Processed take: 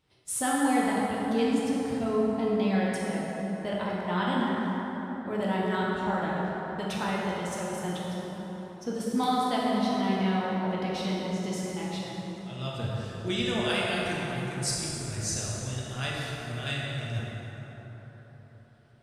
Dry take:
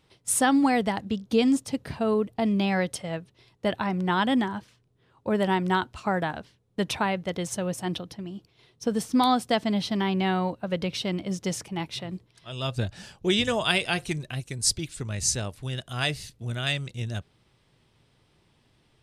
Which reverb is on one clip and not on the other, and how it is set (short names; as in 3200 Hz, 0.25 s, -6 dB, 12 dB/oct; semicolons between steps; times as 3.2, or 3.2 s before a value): plate-style reverb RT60 4.5 s, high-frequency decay 0.45×, DRR -6 dB; gain -9.5 dB